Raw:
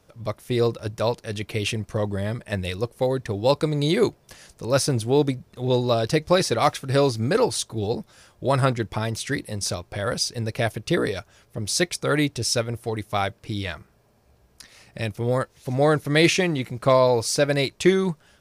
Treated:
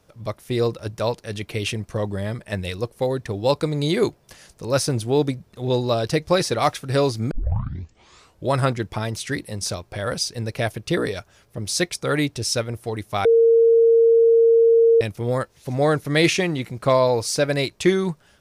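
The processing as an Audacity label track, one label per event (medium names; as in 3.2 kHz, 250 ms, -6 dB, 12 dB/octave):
7.310000	7.310000	tape start 1.16 s
13.250000	15.010000	bleep 459 Hz -11 dBFS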